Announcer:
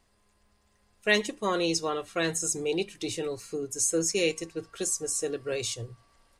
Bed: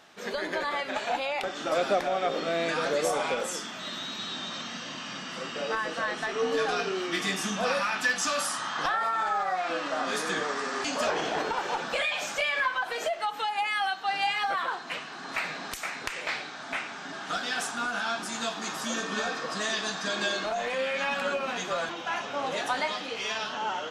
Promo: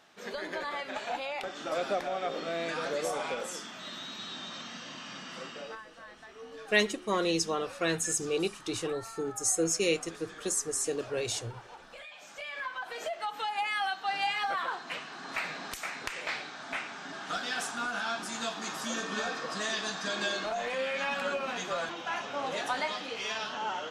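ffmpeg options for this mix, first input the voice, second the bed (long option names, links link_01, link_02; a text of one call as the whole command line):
ffmpeg -i stem1.wav -i stem2.wav -filter_complex "[0:a]adelay=5650,volume=-1.5dB[link_01];[1:a]volume=10.5dB,afade=type=out:start_time=5.41:duration=0.44:silence=0.211349,afade=type=in:start_time=12.19:duration=1.39:silence=0.158489[link_02];[link_01][link_02]amix=inputs=2:normalize=0" out.wav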